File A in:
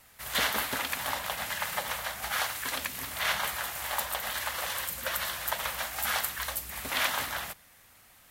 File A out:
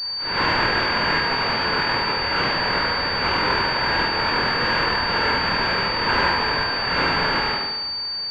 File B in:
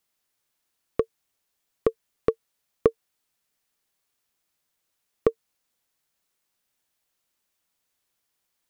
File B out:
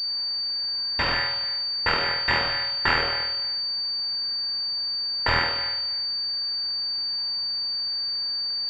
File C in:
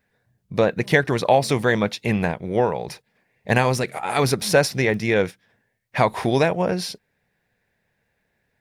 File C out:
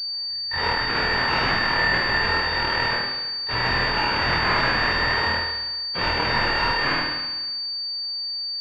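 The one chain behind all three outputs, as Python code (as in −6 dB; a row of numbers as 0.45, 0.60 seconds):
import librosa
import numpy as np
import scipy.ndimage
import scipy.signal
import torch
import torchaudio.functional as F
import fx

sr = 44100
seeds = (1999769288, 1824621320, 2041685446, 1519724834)

p1 = fx.bit_reversed(x, sr, seeds[0], block=256)
p2 = fx.over_compress(p1, sr, threshold_db=-24.0, ratio=-0.5)
p3 = p1 + (p2 * librosa.db_to_amplitude(-2.5))
p4 = fx.transient(p3, sr, attack_db=-8, sustain_db=-3)
p5 = np.clip(10.0 ** (23.5 / 20.0) * p4, -1.0, 1.0) / 10.0 ** (23.5 / 20.0)
p6 = scipy.signal.sosfilt(scipy.signal.cheby1(4, 1.0, [160.0, 980.0], 'bandstop', fs=sr, output='sos'), p5)
p7 = fx.low_shelf(p6, sr, hz=69.0, db=-8.0)
p8 = fx.small_body(p7, sr, hz=(280.0, 890.0, 1600.0), ring_ms=20, db=15)
p9 = p8 + fx.room_flutter(p8, sr, wall_m=4.2, rt60_s=1.2, dry=0)
p10 = fx.pwm(p9, sr, carrier_hz=4600.0)
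y = p10 * 10.0 ** (-9 / 20.0) / np.max(np.abs(p10))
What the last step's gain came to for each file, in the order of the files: +6.5, +13.0, +3.0 decibels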